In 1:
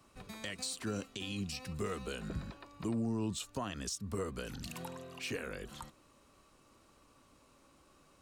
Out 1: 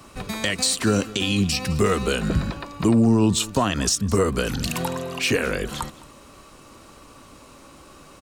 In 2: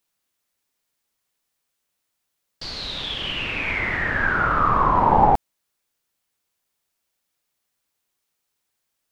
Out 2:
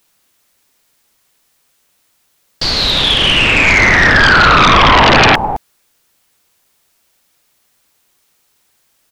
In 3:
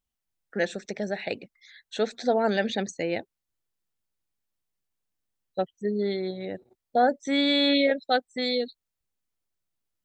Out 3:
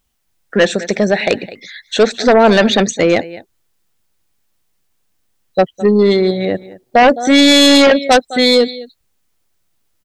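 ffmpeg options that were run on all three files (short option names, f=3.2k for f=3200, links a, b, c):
-af "aecho=1:1:210:0.106,aeval=exprs='0.631*sin(PI/2*5.01*val(0)/0.631)':c=same"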